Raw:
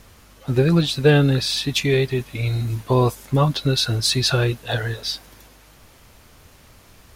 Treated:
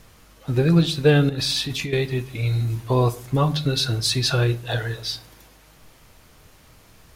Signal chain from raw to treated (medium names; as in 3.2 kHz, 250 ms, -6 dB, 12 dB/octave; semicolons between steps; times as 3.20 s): 1.29–1.93 s: compressor with a negative ratio -24 dBFS, ratio -1; simulated room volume 470 m³, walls furnished, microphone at 0.56 m; trim -2.5 dB